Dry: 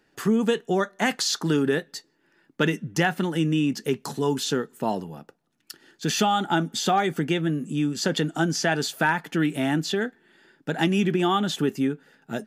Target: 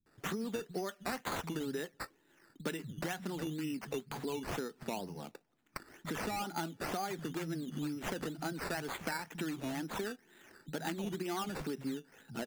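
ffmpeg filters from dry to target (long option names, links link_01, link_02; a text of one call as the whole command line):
ffmpeg -i in.wav -filter_complex "[0:a]acompressor=threshold=-33dB:ratio=6,acrossover=split=160[link_01][link_02];[link_02]adelay=60[link_03];[link_01][link_03]amix=inputs=2:normalize=0,acrusher=samples=11:mix=1:aa=0.000001:lfo=1:lforange=6.6:lforate=2.1,volume=-2dB" out.wav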